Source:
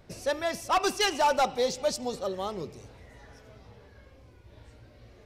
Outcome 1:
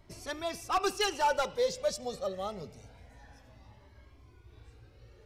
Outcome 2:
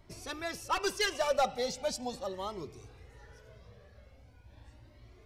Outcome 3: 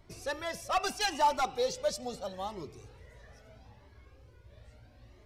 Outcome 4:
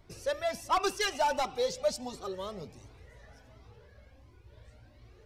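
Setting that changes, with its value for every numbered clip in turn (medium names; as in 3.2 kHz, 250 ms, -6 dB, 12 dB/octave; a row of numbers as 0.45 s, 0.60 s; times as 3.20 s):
Shepard-style flanger, rate: 0.25 Hz, 0.4 Hz, 0.77 Hz, 1.4 Hz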